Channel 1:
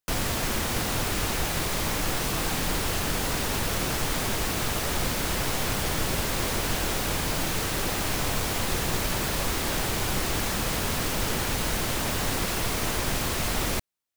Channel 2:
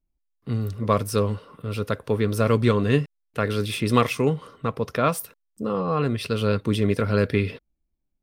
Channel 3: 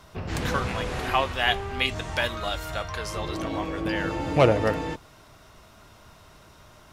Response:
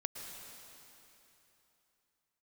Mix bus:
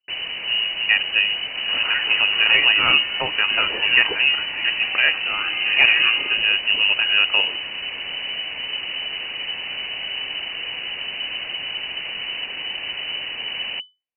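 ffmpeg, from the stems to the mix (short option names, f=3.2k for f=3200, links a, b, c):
-filter_complex "[0:a]equalizer=f=1.7k:t=o:w=0.72:g=-10.5,volume=0dB[a];[1:a]volume=2.5dB[b];[2:a]adelay=1400,volume=2dB[c];[a][b][c]amix=inputs=3:normalize=0,lowpass=f=2.6k:t=q:w=0.5098,lowpass=f=2.6k:t=q:w=0.6013,lowpass=f=2.6k:t=q:w=0.9,lowpass=f=2.6k:t=q:w=2.563,afreqshift=-3000"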